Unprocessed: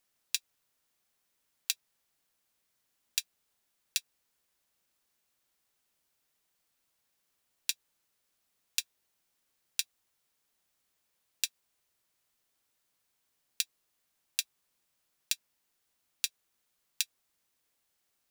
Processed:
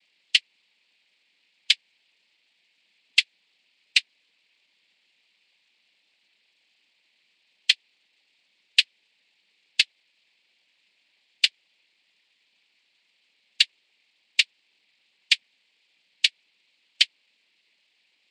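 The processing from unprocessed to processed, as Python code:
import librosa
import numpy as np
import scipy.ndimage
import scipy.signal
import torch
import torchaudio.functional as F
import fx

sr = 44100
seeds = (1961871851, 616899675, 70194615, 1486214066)

y = fx.brickwall_bandpass(x, sr, low_hz=170.0, high_hz=4600.0)
y = fx.noise_vocoder(y, sr, seeds[0], bands=8)
y = fx.high_shelf_res(y, sr, hz=1800.0, db=7.5, q=3.0)
y = y * 10.0 ** (7.5 / 20.0)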